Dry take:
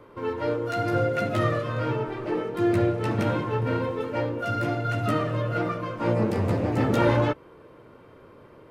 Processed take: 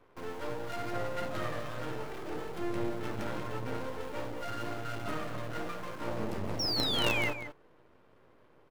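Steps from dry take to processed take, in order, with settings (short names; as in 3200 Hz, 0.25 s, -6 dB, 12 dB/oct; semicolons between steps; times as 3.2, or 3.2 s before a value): low shelf 100 Hz -7 dB; half-wave rectifier; painted sound fall, 6.59–7.29, 2000–5700 Hz -26 dBFS; in parallel at -11.5 dB: companded quantiser 2-bit; on the sum: outdoor echo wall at 32 m, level -10 dB; gain -8.5 dB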